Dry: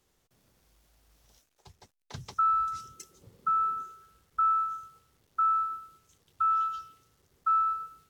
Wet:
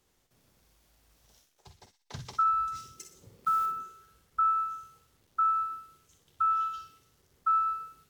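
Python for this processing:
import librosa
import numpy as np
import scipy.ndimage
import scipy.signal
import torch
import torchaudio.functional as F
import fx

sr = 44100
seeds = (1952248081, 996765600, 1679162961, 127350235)

y = fx.block_float(x, sr, bits=5, at=(2.75, 3.67))
y = fx.doubler(y, sr, ms=49.0, db=-10.0)
y = fx.echo_wet_highpass(y, sr, ms=62, feedback_pct=40, hz=1800.0, wet_db=-8.0)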